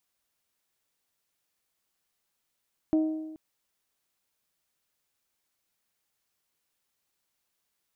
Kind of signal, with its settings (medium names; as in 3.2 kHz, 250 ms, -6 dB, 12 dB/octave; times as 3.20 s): metal hit bell, length 0.43 s, lowest mode 314 Hz, decay 1.14 s, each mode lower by 12 dB, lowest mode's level -19 dB